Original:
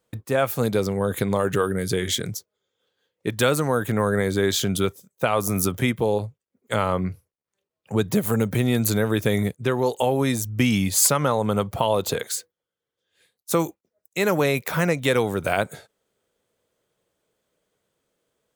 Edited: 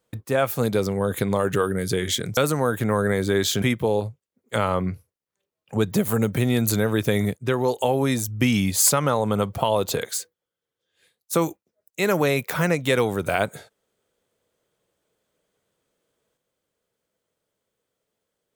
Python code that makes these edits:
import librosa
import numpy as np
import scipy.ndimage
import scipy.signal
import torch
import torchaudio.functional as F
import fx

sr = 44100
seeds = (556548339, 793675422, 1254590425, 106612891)

y = fx.edit(x, sr, fx.cut(start_s=2.37, length_s=1.08),
    fx.cut(start_s=4.7, length_s=1.1), tone=tone)